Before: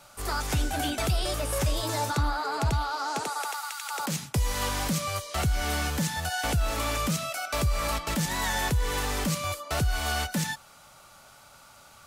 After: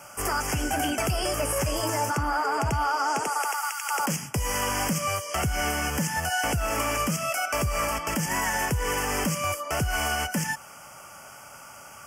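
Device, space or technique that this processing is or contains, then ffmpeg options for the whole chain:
PA system with an anti-feedback notch: -af "highpass=frequency=130:poles=1,asuperstop=centerf=3900:order=8:qfactor=2.4,alimiter=level_in=1dB:limit=-24dB:level=0:latency=1:release=196,volume=-1dB,volume=8dB"

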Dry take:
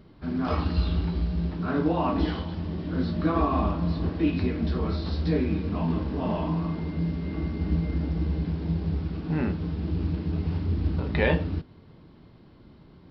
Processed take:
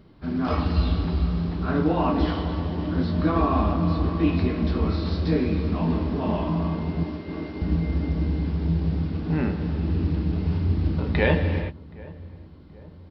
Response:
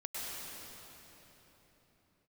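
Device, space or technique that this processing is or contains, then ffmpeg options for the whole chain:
keyed gated reverb: -filter_complex "[0:a]asettb=1/sr,asplit=3[link_01][link_02][link_03];[link_01]atrim=end=7.034[link_04];[link_02]atrim=start=7.03:end=7.62,asetpts=PTS-STARTPTS,afade=type=in:duration=0.004:curve=qsin,afade=type=out:start_time=0.586:duration=0.004:curve=qsin,highpass=frequency=270:width=0.5412,highpass=frequency=270:width=1.3066[link_05];[link_03]atrim=start=7.616[link_06];[link_04][link_05]acrossfade=duration=0.004:curve1=hsin:curve2=qsin[link_07];[link_07][link_06]acrossfade=duration=0.004:curve1=qsin:curve2=hsin,asplit=3[link_08][link_09][link_10];[1:a]atrim=start_sample=2205[link_11];[link_09][link_11]afir=irnorm=-1:irlink=0[link_12];[link_10]apad=whole_len=578011[link_13];[link_12][link_13]sidechaingate=range=-33dB:threshold=-38dB:ratio=16:detection=peak,volume=-6.5dB[link_14];[link_08][link_14]amix=inputs=2:normalize=0,asplit=2[link_15][link_16];[link_16]adelay=774,lowpass=frequency=1000:poles=1,volume=-20.5dB,asplit=2[link_17][link_18];[link_18]adelay=774,lowpass=frequency=1000:poles=1,volume=0.55,asplit=2[link_19][link_20];[link_20]adelay=774,lowpass=frequency=1000:poles=1,volume=0.55,asplit=2[link_21][link_22];[link_22]adelay=774,lowpass=frequency=1000:poles=1,volume=0.55[link_23];[link_15][link_17][link_19][link_21][link_23]amix=inputs=5:normalize=0"

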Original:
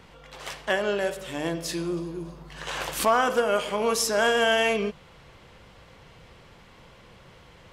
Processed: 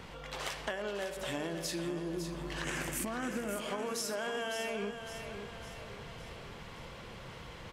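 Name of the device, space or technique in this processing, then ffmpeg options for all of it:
serial compression, leveller first: -filter_complex "[0:a]asettb=1/sr,asplit=3[link_01][link_02][link_03];[link_01]atrim=end=2.644[link_04];[link_02]atrim=start=2.64:end=3.56,asetpts=PTS-STARTPTS,afade=type=in:duration=0.004:curve=qsin,afade=type=out:start_time=0.916:duration=0.004:curve=qsin,equalizer=frequency=125:width_type=o:width=1:gain=6,equalizer=frequency=250:width_type=o:width=1:gain=11,equalizer=frequency=500:width_type=o:width=1:gain=-4,equalizer=frequency=1000:width_type=o:width=1:gain=-7,equalizer=frequency=2000:width_type=o:width=1:gain=6,equalizer=frequency=4000:width_type=o:width=1:gain=-12,equalizer=frequency=8000:width_type=o:width=1:gain=6[link_05];[link_03]atrim=start=3.556[link_06];[link_04][link_05]acrossfade=duration=0.004:curve1=hsin:curve2=qsin[link_07];[link_07][link_06]acrossfade=duration=0.004:curve1=qsin:curve2=hsin,acompressor=threshold=-25dB:ratio=6,acompressor=threshold=-38dB:ratio=6,aecho=1:1:556|1112|1668|2224|2780|3336:0.376|0.188|0.094|0.047|0.0235|0.0117,volume=3dB"

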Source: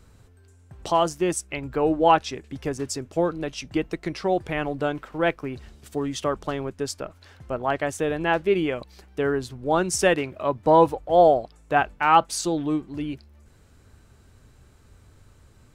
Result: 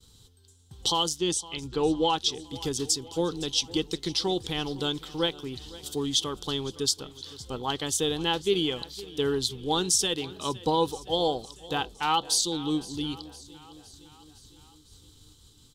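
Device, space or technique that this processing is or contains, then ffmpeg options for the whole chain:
over-bright horn tweeter: -filter_complex "[0:a]agate=range=-33dB:threshold=-49dB:ratio=3:detection=peak,highshelf=frequency=2500:width_type=q:width=3:gain=11,alimiter=limit=-10.5dB:level=0:latency=1:release=362,asettb=1/sr,asplit=3[link_01][link_02][link_03];[link_01]atrim=end=1.164[link_04];[link_02]atrim=start=1.16:end=2.17,asetpts=PTS-STARTPTS,afade=type=in:duration=0.004:curve=qsin,afade=type=out:start_time=1.006:duration=0.004:curve=qsin,lowpass=7500[link_05];[link_03]atrim=start=2.166[link_06];[link_04][link_05]acrossfade=duration=0.004:curve1=hsin:curve2=qsin[link_07];[link_07][link_06]acrossfade=duration=0.004:curve1=qsin:curve2=hsin,superequalizer=8b=0.251:12b=0.447,aecho=1:1:511|1022|1533|2044|2555:0.112|0.0662|0.0391|0.023|0.0136,volume=-2.5dB"

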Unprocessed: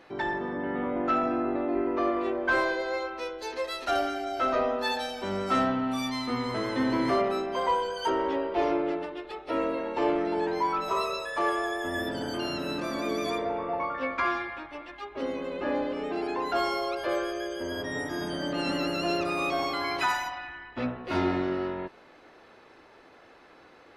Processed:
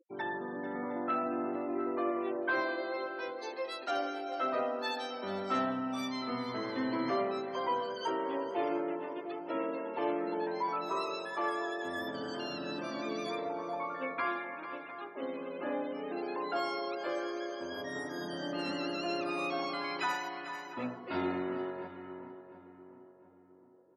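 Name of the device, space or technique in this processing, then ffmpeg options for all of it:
ducked delay: -filter_complex "[0:a]highpass=140,afftfilt=real='re*gte(hypot(re,im),0.01)':imag='im*gte(hypot(re,im),0.01)':win_size=1024:overlap=0.75,asplit=3[link_01][link_02][link_03];[link_02]adelay=444,volume=-9dB[link_04];[link_03]apad=whole_len=1076576[link_05];[link_04][link_05]sidechaincompress=threshold=-33dB:ratio=8:attack=16:release=491[link_06];[link_01][link_06]amix=inputs=2:normalize=0,asplit=2[link_07][link_08];[link_08]adelay=704,lowpass=frequency=1400:poles=1,volume=-11.5dB,asplit=2[link_09][link_10];[link_10]adelay=704,lowpass=frequency=1400:poles=1,volume=0.46,asplit=2[link_11][link_12];[link_12]adelay=704,lowpass=frequency=1400:poles=1,volume=0.46,asplit=2[link_13][link_14];[link_14]adelay=704,lowpass=frequency=1400:poles=1,volume=0.46,asplit=2[link_15][link_16];[link_16]adelay=704,lowpass=frequency=1400:poles=1,volume=0.46[link_17];[link_07][link_09][link_11][link_13][link_15][link_17]amix=inputs=6:normalize=0,volume=-6.5dB"

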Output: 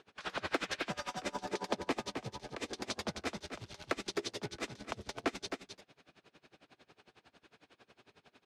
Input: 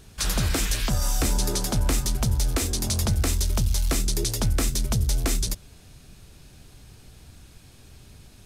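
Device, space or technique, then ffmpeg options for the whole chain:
helicopter radio: -filter_complex "[0:a]highpass=380,lowpass=2700,aeval=exprs='val(0)*pow(10,-26*(0.5-0.5*cos(2*PI*11*n/s))/20)':channel_layout=same,asoftclip=type=hard:threshold=-23.5dB,asettb=1/sr,asplit=3[link_01][link_02][link_03];[link_01]atrim=end=1.444[link_04];[link_02]atrim=start=1.44:end=2.69,asetpts=PTS-STARTPTS,afade=type=in:duration=0.004:curve=qsin,afade=type=out:start_time=1.246:duration=0.004:curve=qsin,bandreject=frequency=1400:width=7[link_05];[link_03]atrim=start=2.686[link_06];[link_04][link_05]acrossfade=duration=0.004:curve1=hsin:curve2=qsin[link_07];[link_07][link_06]acrossfade=duration=0.004:curve1=qsin:curve2=hsin,aecho=1:1:263:0.422,volume=1.5dB"

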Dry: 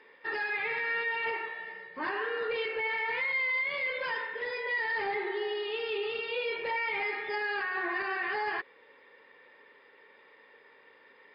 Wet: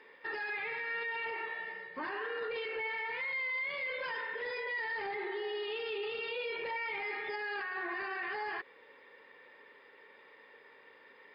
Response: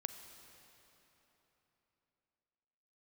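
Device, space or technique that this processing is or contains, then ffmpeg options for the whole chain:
stacked limiters: -af "alimiter=level_in=3dB:limit=-24dB:level=0:latency=1:release=14,volume=-3dB,alimiter=level_in=6.5dB:limit=-24dB:level=0:latency=1:release=71,volume=-6.5dB"

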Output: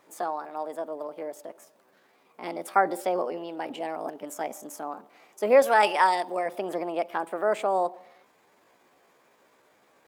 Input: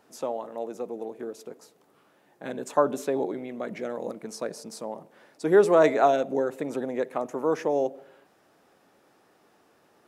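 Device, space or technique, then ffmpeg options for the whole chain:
chipmunk voice: -filter_complex "[0:a]asetrate=58866,aresample=44100,atempo=0.749154,asettb=1/sr,asplit=3[link_01][link_02][link_03];[link_01]atrim=end=5.624[link_04];[link_02]atrim=start=5.62:end=6.46,asetpts=PTS-STARTPTS,afade=type=in:duration=0.004:curve=qsin,afade=type=out:start_time=0.836:duration=0.004:curve=qsin,tiltshelf=frequency=1200:gain=-5.5[link_05];[link_03]atrim=start=6.456[link_06];[link_04][link_05]acrossfade=duration=0.004:curve1=hsin:curve2=qsin[link_07];[link_07][link_06]acrossfade=duration=0.004:curve1=qsin:curve2=hsin"

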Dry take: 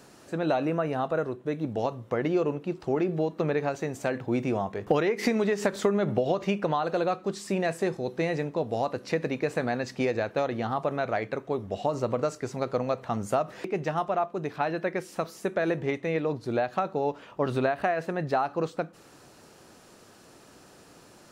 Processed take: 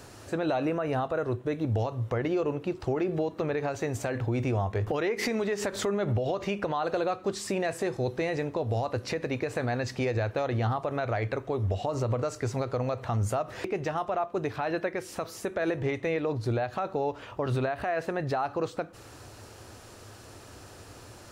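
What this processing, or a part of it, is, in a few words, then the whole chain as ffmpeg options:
car stereo with a boomy subwoofer: -af "lowshelf=frequency=130:width_type=q:width=3:gain=7,alimiter=level_in=0.5dB:limit=-24dB:level=0:latency=1:release=149,volume=-0.5dB,volume=4.5dB"

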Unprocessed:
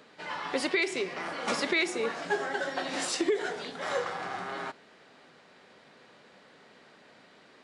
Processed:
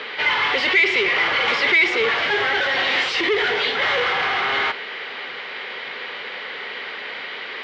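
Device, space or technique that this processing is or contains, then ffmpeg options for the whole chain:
overdrive pedal into a guitar cabinet: -filter_complex "[0:a]asplit=2[link_01][link_02];[link_02]highpass=frequency=720:poles=1,volume=31dB,asoftclip=type=tanh:threshold=-15.5dB[link_03];[link_01][link_03]amix=inputs=2:normalize=0,lowpass=frequency=5800:poles=1,volume=-6dB,highpass=89,equalizer=frequency=190:width_type=q:width=4:gain=-7,equalizer=frequency=290:width_type=q:width=4:gain=-6,equalizer=frequency=440:width_type=q:width=4:gain=4,equalizer=frequency=650:width_type=q:width=4:gain=-6,equalizer=frequency=2100:width_type=q:width=4:gain=9,equalizer=frequency=3100:width_type=q:width=4:gain=7,lowpass=frequency=4500:width=0.5412,lowpass=frequency=4500:width=1.3066"

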